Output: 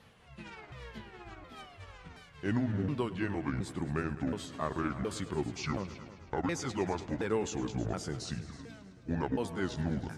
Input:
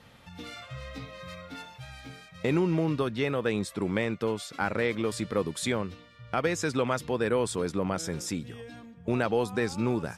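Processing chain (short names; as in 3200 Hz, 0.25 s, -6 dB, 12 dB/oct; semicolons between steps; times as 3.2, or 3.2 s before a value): repeated pitch sweeps -10 st, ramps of 0.721 s; multi-head echo 0.106 s, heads all three, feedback 41%, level -18 dB; gain -4.5 dB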